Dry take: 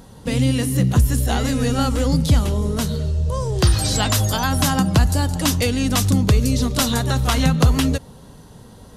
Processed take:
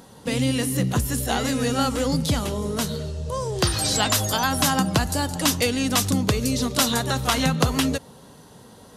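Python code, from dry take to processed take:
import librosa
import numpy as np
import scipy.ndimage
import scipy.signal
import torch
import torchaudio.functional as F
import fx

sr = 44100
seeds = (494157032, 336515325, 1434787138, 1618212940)

y = fx.highpass(x, sr, hz=260.0, slope=6)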